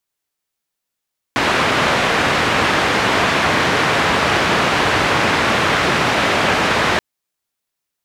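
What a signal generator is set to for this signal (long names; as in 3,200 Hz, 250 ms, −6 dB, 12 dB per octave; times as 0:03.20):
band-limited noise 81–2,000 Hz, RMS −16 dBFS 5.63 s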